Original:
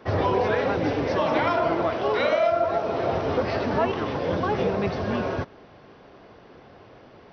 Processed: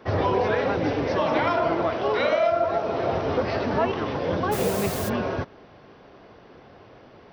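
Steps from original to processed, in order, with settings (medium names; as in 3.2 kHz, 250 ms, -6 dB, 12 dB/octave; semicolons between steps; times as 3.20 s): 4.51–5.08 s: added noise white -35 dBFS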